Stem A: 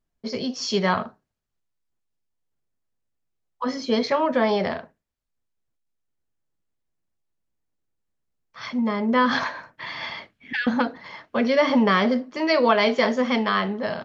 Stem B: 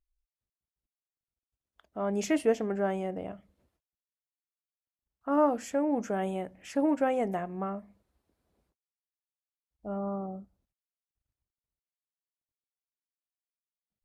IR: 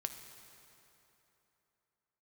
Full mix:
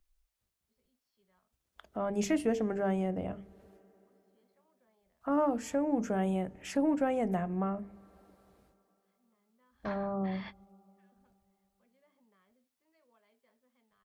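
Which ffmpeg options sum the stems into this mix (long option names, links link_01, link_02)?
-filter_complex "[0:a]lowpass=3800,adelay=450,volume=-7dB[link_01];[1:a]acontrast=73,bandreject=frequency=50:width_type=h:width=6,bandreject=frequency=100:width_type=h:width=6,bandreject=frequency=150:width_type=h:width=6,bandreject=frequency=200:width_type=h:width=6,bandreject=frequency=250:width_type=h:width=6,bandreject=frequency=300:width_type=h:width=6,bandreject=frequency=350:width_type=h:width=6,bandreject=frequency=400:width_type=h:width=6,bandreject=frequency=450:width_type=h:width=6,volume=1.5dB,asplit=3[link_02][link_03][link_04];[link_03]volume=-19.5dB[link_05];[link_04]apad=whole_len=639119[link_06];[link_01][link_06]sidechaingate=range=-45dB:threshold=-42dB:ratio=16:detection=peak[link_07];[2:a]atrim=start_sample=2205[link_08];[link_05][link_08]afir=irnorm=-1:irlink=0[link_09];[link_07][link_02][link_09]amix=inputs=3:normalize=0,acrossover=split=180[link_10][link_11];[link_11]acompressor=threshold=-51dB:ratio=1.5[link_12];[link_10][link_12]amix=inputs=2:normalize=0"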